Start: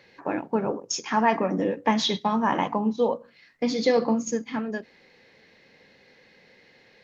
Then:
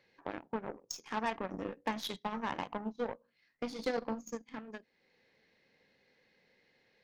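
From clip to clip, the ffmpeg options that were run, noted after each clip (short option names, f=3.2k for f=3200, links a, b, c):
-af "acompressor=threshold=-48dB:ratio=1.5,aeval=exprs='0.112*(cos(1*acos(clip(val(0)/0.112,-1,1)))-cos(1*PI/2))+0.00562*(cos(3*acos(clip(val(0)/0.112,-1,1)))-cos(3*PI/2))+0.00282*(cos(4*acos(clip(val(0)/0.112,-1,1)))-cos(4*PI/2))+0.00398*(cos(6*acos(clip(val(0)/0.112,-1,1)))-cos(6*PI/2))+0.01*(cos(7*acos(clip(val(0)/0.112,-1,1)))-cos(7*PI/2))':c=same,volume=-1.5dB"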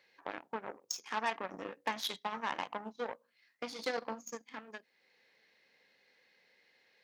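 -af "highpass=f=140:p=1,lowshelf=f=480:g=-12,volume=3.5dB"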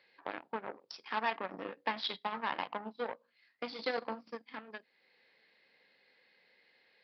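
-af "highpass=100,aresample=11025,aresample=44100,volume=1dB"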